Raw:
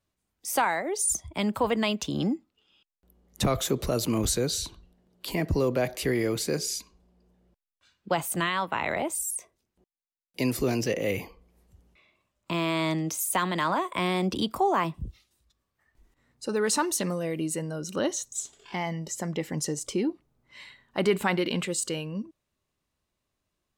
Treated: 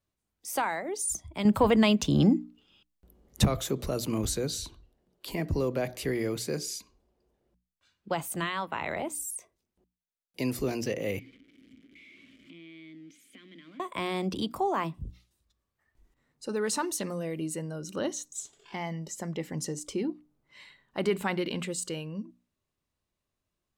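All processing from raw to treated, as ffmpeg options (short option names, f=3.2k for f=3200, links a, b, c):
-filter_complex "[0:a]asettb=1/sr,asplit=3[a][b][c];[a]atrim=end=1.454[d];[b]atrim=start=1.45:end=3.45,asetpts=PTS-STARTPTS,afade=t=in:d=0.004:c=qsin,afade=t=out:st=1.996:d=0.004:c=qsin,lowshelf=f=190:g=7.5,acontrast=61[e];[c]atrim=start=3.446[f];[d][e]acrossfade=d=0.004:c1=hsin:c2=qsin[g];[g][f]acrossfade=d=0.004:c1=qsin:c2=hsin,asettb=1/sr,asplit=3[h][i][j];[h]atrim=end=11.194[k];[i]atrim=start=11.19:end=13.8,asetpts=PTS-STARTPTS,afade=t=in:d=0.004:c=qsin,afade=t=out:st=2.606:d=0.004:c=qsin,aeval=exprs='val(0)+0.5*0.0266*sgn(val(0))':c=same,asplit=3[l][m][n];[l]bandpass=f=270:t=q:w=8,volume=0dB[o];[m]bandpass=f=2.29k:t=q:w=8,volume=-6dB[p];[n]bandpass=f=3.01k:t=q:w=8,volume=-9dB[q];[o][p][q]amix=inputs=3:normalize=0,acompressor=threshold=-45dB:ratio=2.5:attack=3.2:release=140:knee=1:detection=peak[r];[j]atrim=start=13.796[s];[k][r]acrossfade=d=0.004:c1=hsin:c2=qsin[t];[t][s]acrossfade=d=0.004:c1=qsin:c2=hsin,lowshelf=f=360:g=3,bandreject=f=60:t=h:w=6,bandreject=f=120:t=h:w=6,bandreject=f=180:t=h:w=6,bandreject=f=240:t=h:w=6,bandreject=f=300:t=h:w=6,volume=-5dB"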